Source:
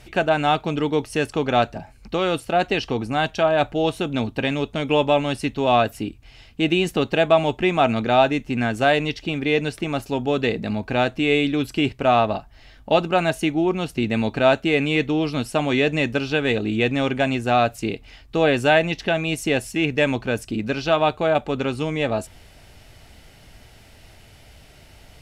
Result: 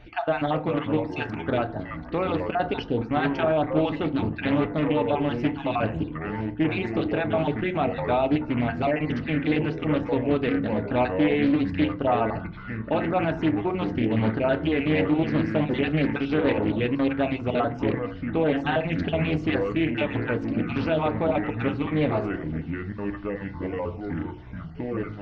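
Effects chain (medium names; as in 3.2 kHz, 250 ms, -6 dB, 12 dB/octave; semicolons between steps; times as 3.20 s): random holes in the spectrogram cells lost 31%; peak limiter -14 dBFS, peak gain reduction 9 dB; Gaussian low-pass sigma 2.4 samples; ever faster or slower copies 301 ms, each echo -5 st, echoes 3, each echo -6 dB; FDN reverb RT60 0.44 s, low-frequency decay 1.4×, high-frequency decay 0.4×, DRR 7.5 dB; loudspeaker Doppler distortion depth 0.28 ms; trim -1.5 dB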